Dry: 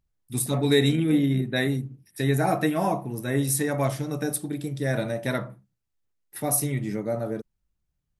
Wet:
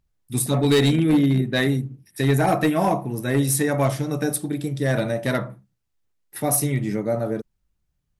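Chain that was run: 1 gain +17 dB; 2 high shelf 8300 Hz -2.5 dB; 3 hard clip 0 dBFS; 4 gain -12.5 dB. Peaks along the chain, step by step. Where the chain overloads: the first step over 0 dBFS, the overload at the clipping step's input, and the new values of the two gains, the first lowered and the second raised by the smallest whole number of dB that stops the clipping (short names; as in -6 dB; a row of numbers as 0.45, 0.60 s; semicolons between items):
+7.5, +7.5, 0.0, -12.5 dBFS; step 1, 7.5 dB; step 1 +9 dB, step 4 -4.5 dB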